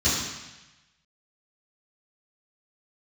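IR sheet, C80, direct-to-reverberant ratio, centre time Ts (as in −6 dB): 3.0 dB, −14.0 dB, 77 ms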